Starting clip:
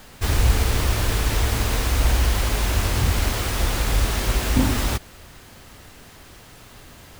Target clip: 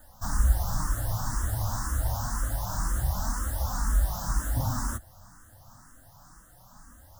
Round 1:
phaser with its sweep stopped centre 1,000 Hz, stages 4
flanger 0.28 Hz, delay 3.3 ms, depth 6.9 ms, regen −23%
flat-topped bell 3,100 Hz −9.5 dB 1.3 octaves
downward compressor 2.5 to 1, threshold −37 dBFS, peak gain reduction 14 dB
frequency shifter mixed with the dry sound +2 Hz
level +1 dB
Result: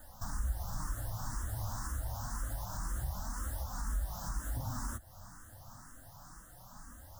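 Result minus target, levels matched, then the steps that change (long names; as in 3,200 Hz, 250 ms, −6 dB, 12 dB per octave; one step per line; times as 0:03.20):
downward compressor: peak gain reduction +14 dB
remove: downward compressor 2.5 to 1, threshold −37 dBFS, peak gain reduction 14 dB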